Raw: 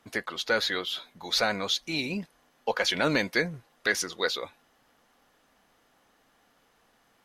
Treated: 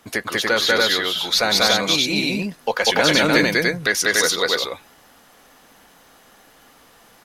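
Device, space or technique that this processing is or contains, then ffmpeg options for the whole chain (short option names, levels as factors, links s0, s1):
parallel compression: -filter_complex "[0:a]highshelf=f=6500:g=7,aecho=1:1:192.4|288.6:1|0.891,asplit=2[s0][s1];[s1]acompressor=threshold=0.0178:ratio=6,volume=0.891[s2];[s0][s2]amix=inputs=2:normalize=0,volume=1.58"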